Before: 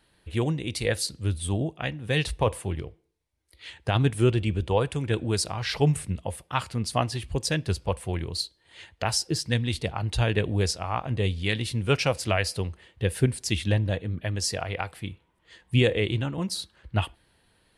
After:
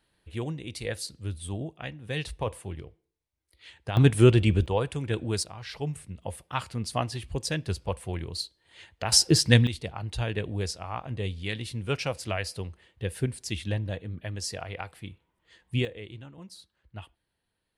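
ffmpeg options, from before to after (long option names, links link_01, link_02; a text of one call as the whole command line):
ffmpeg -i in.wav -af "asetnsamples=nb_out_samples=441:pad=0,asendcmd='3.97 volume volume 4dB;4.66 volume volume -3dB;5.43 volume volume -10.5dB;6.22 volume volume -3.5dB;9.12 volume volume 7dB;9.67 volume volume -6dB;15.85 volume volume -16.5dB',volume=-7dB" out.wav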